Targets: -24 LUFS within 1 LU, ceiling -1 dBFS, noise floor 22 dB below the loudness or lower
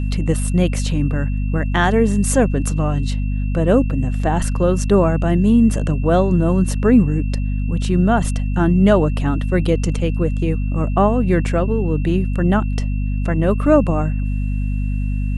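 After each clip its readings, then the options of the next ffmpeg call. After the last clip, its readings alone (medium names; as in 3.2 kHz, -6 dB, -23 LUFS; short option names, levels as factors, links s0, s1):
hum 50 Hz; highest harmonic 250 Hz; hum level -17 dBFS; steady tone 2.7 kHz; tone level -41 dBFS; loudness -18.0 LUFS; peak level -1.0 dBFS; loudness target -24.0 LUFS
-> -af "bandreject=f=50:t=h:w=4,bandreject=f=100:t=h:w=4,bandreject=f=150:t=h:w=4,bandreject=f=200:t=h:w=4,bandreject=f=250:t=h:w=4"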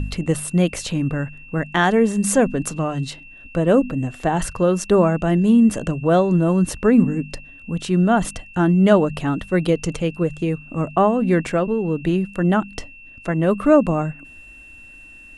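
hum not found; steady tone 2.7 kHz; tone level -41 dBFS
-> -af "bandreject=f=2700:w=30"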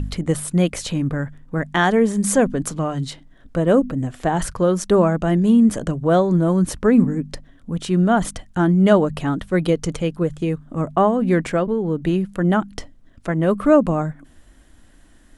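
steady tone not found; loudness -19.5 LUFS; peak level -2.5 dBFS; loudness target -24.0 LUFS
-> -af "volume=0.596"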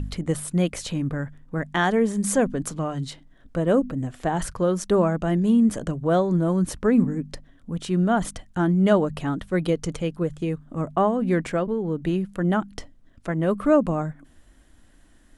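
loudness -24.0 LUFS; peak level -7.0 dBFS; noise floor -55 dBFS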